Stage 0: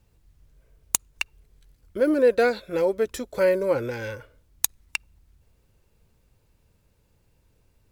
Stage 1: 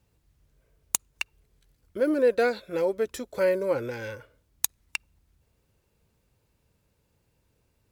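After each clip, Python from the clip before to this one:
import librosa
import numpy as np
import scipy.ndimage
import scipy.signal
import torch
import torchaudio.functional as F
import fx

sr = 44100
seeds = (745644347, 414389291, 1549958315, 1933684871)

y = fx.highpass(x, sr, hz=79.0, slope=6)
y = y * 10.0 ** (-3.0 / 20.0)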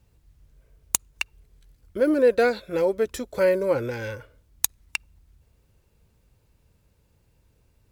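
y = fx.low_shelf(x, sr, hz=83.0, db=10.0)
y = y * 10.0 ** (3.0 / 20.0)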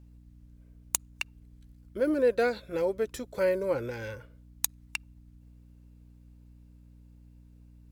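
y = fx.add_hum(x, sr, base_hz=60, snr_db=20)
y = y * 10.0 ** (-6.0 / 20.0)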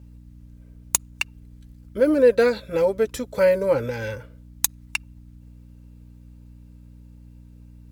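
y = fx.notch_comb(x, sr, f0_hz=360.0)
y = y * 10.0 ** (9.0 / 20.0)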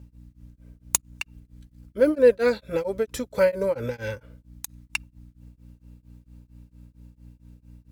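y = x * np.abs(np.cos(np.pi * 4.4 * np.arange(len(x)) / sr))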